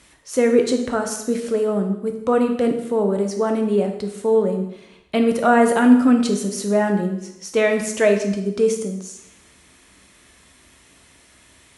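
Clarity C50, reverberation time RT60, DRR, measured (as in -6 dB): 7.5 dB, 0.80 s, 4.0 dB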